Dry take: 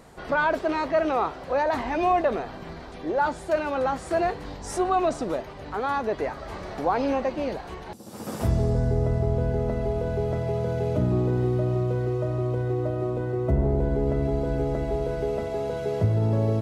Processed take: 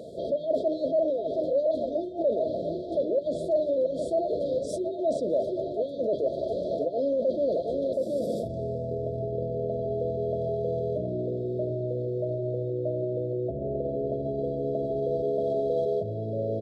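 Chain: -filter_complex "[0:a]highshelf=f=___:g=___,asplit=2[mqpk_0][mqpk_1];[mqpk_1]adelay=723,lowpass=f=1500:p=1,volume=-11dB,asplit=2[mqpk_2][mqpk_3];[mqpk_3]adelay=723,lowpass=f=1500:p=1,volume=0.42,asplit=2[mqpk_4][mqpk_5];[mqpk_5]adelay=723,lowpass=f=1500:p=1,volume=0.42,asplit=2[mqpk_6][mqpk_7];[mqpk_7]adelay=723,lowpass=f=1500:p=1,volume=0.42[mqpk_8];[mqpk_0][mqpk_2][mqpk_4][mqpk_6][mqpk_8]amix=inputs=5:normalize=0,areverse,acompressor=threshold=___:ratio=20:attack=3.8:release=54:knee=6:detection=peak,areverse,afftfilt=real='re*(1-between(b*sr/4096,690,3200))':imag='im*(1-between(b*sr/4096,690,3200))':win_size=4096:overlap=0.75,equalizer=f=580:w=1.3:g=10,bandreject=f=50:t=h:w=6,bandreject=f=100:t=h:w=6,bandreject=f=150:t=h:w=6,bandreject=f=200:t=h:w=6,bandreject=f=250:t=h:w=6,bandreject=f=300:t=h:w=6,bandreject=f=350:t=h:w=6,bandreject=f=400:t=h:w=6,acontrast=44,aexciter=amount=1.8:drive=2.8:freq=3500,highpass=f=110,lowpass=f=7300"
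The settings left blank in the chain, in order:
2800, -10.5, -35dB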